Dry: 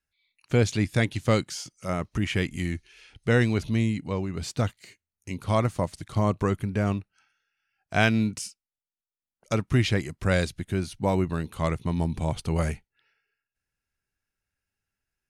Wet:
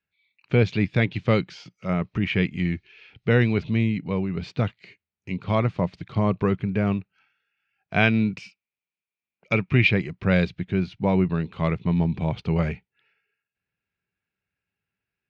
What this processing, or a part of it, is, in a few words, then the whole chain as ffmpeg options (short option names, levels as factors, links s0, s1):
guitar cabinet: -filter_complex "[0:a]asettb=1/sr,asplit=3[s0][s1][s2];[s0]atrim=end=8.374[s3];[s1]atrim=start=8.37:end=9.91,asetpts=PTS-STARTPTS,afade=t=in:d=0.004:c=qsin,afade=t=out:st=1.536:d=0.004:c=qsin,equalizer=f=2400:w=4:g=10.5[s4];[s2]atrim=start=9.906[s5];[s3][s4]acrossfade=d=0.004:c1=hsin:c2=qsin[s6];[s6][s5]acrossfade=d=0.004:c1=qsin:c2=hsin,highpass=80,equalizer=f=120:t=q:w=4:g=3,equalizer=f=180:t=q:w=4:g=8,equalizer=f=420:t=q:w=4:g=4,equalizer=f=2400:t=q:w=4:g=6,lowpass=f=4000:w=0.5412,lowpass=f=4000:w=1.3066"